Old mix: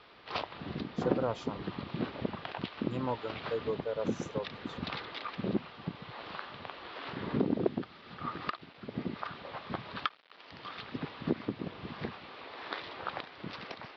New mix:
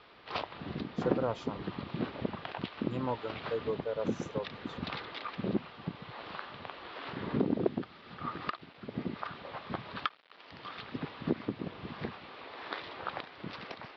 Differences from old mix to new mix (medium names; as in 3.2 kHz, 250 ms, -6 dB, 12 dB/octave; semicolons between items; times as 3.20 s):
second sound: add tilt EQ +4 dB/octave; master: add treble shelf 6.9 kHz -6 dB